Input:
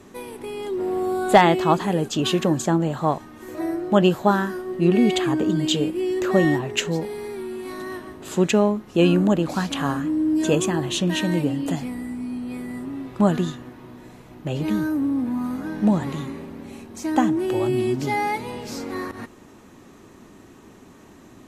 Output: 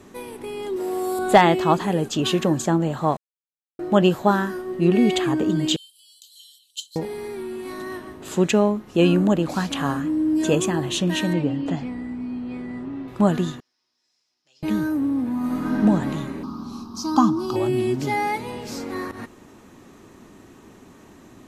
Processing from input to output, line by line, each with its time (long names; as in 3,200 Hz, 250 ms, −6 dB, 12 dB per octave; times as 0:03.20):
0:00.76–0:01.19: bass and treble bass −9 dB, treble +11 dB
0:03.17–0:03.79: silence
0:05.76–0:06.96: Chebyshev high-pass with heavy ripple 3,000 Hz, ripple 9 dB
0:11.33–0:13.08: high-frequency loss of the air 140 metres
0:13.60–0:14.63: resonant band-pass 5,200 Hz, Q 10
0:15.37–0:15.78: thrown reverb, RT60 2.6 s, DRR −4 dB
0:16.43–0:17.56: drawn EQ curve 130 Hz 0 dB, 220 Hz +6 dB, 330 Hz −2 dB, 550 Hz −12 dB, 1,200 Hz +14 dB, 1,900 Hz −23 dB, 5,000 Hz +14 dB, 7,900 Hz −7 dB, 13,000 Hz −1 dB